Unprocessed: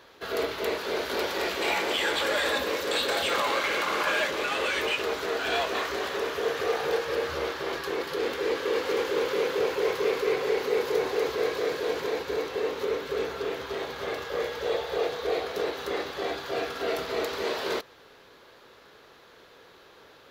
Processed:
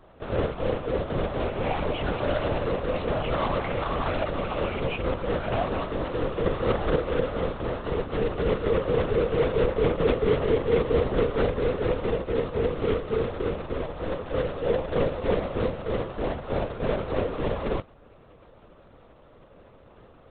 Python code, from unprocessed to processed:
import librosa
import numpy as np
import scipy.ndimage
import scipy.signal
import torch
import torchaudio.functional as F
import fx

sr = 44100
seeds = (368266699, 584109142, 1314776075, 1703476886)

y = scipy.ndimage.median_filter(x, 25, mode='constant')
y = fx.lpc_vocoder(y, sr, seeds[0], excitation='whisper', order=10)
y = y * librosa.db_to_amplitude(4.5)